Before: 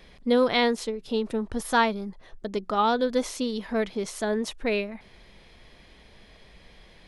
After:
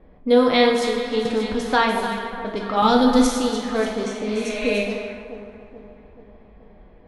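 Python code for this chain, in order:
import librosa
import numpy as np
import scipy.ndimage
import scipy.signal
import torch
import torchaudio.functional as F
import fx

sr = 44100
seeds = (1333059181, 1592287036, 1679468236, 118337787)

y = fx.bass_treble(x, sr, bass_db=13, treble_db=9, at=(2.82, 3.27))
y = fx.echo_alternate(y, sr, ms=216, hz=1000.0, feedback_pct=74, wet_db=-11.5)
y = fx.spec_repair(y, sr, seeds[0], start_s=4.08, length_s=0.6, low_hz=610.0, high_hz=5400.0, source='both')
y = fx.echo_thinned(y, sr, ms=292, feedback_pct=49, hz=400.0, wet_db=-10.0)
y = fx.env_lowpass(y, sr, base_hz=750.0, full_db=-21.5)
y = fx.rev_double_slope(y, sr, seeds[1], early_s=0.76, late_s=1.9, knee_db=-18, drr_db=1.0)
y = fx.band_squash(y, sr, depth_pct=40, at=(1.25, 2.07))
y = y * 10.0 ** (2.5 / 20.0)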